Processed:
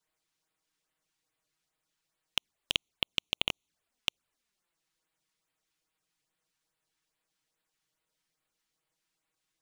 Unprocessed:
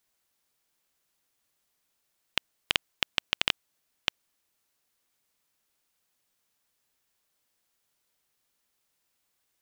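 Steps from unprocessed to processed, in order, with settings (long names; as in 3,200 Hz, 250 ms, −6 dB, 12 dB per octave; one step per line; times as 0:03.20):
running median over 3 samples
auto-filter notch sine 2.4 Hz 510–6,300 Hz
flanger swept by the level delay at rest 6.5 ms, full sweep at −37.5 dBFS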